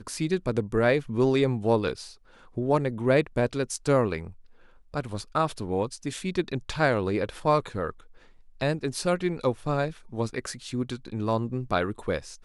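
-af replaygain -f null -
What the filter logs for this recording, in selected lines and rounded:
track_gain = +6.5 dB
track_peak = 0.220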